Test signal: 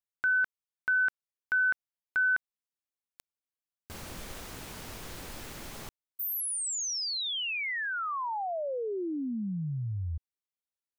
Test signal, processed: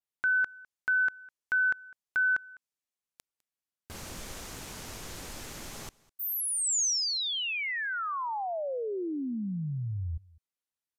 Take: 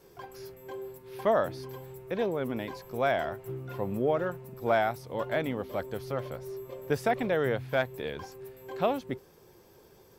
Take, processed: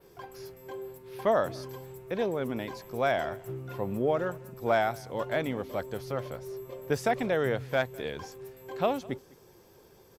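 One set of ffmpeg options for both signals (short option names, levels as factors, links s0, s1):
-filter_complex "[0:a]adynamicequalizer=threshold=0.00178:dfrequency=6600:dqfactor=1.4:tfrequency=6600:tqfactor=1.4:attack=5:release=100:ratio=0.375:range=3:mode=boostabove:tftype=bell,asplit=2[s0][s1];[s1]aecho=0:1:204:0.0668[s2];[s0][s2]amix=inputs=2:normalize=0,aresample=32000,aresample=44100"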